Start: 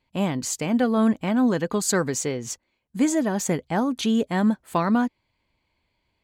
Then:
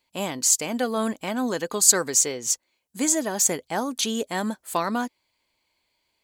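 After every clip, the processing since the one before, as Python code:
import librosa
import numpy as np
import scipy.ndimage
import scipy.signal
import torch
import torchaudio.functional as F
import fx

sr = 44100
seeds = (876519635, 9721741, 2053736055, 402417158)

y = fx.bass_treble(x, sr, bass_db=-12, treble_db=12)
y = y * 10.0 ** (-1.0 / 20.0)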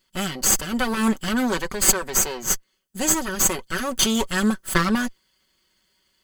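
y = fx.lower_of_two(x, sr, delay_ms=0.63)
y = y + 0.59 * np.pad(y, (int(5.3 * sr / 1000.0), 0))[:len(y)]
y = fx.rider(y, sr, range_db=4, speed_s=0.5)
y = y * 10.0 ** (3.0 / 20.0)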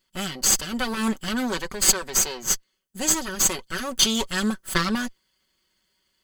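y = fx.dynamic_eq(x, sr, hz=4300.0, q=0.98, threshold_db=-36.0, ratio=4.0, max_db=8)
y = y * 10.0 ** (-4.0 / 20.0)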